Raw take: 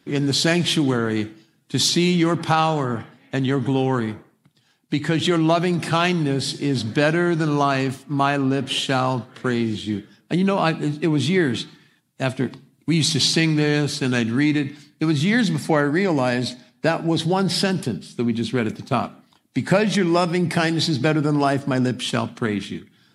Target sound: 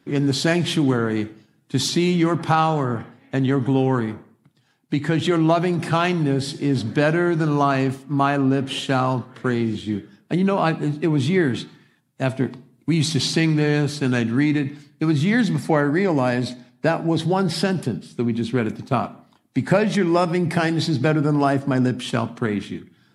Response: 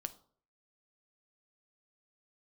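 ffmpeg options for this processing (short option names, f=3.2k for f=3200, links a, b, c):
-filter_complex "[0:a]asplit=2[a][b];[1:a]atrim=start_sample=2205,asetrate=39249,aresample=44100,lowpass=2.5k[c];[b][c]afir=irnorm=-1:irlink=0,volume=-1.5dB[d];[a][d]amix=inputs=2:normalize=0,volume=-4dB"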